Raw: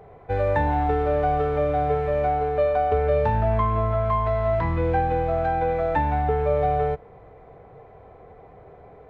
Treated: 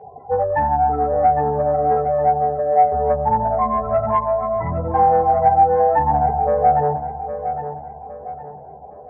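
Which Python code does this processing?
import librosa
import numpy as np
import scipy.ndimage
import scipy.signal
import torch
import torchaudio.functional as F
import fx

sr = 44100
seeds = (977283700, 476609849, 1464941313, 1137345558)

p1 = fx.spec_gate(x, sr, threshold_db=-15, keep='strong')
p2 = fx.rider(p1, sr, range_db=4, speed_s=0.5)
p3 = p1 + (p2 * 10.0 ** (0.0 / 20.0))
p4 = fx.chorus_voices(p3, sr, voices=4, hz=0.71, base_ms=14, depth_ms=2.0, mix_pct=60)
p5 = 10.0 ** (-10.5 / 20.0) * np.tanh(p4 / 10.0 ** (-10.5 / 20.0))
p6 = fx.cabinet(p5, sr, low_hz=130.0, low_slope=12, high_hz=2200.0, hz=(220.0, 350.0, 810.0), db=(10, -9, 10))
y = p6 + fx.echo_feedback(p6, sr, ms=811, feedback_pct=38, wet_db=-9.5, dry=0)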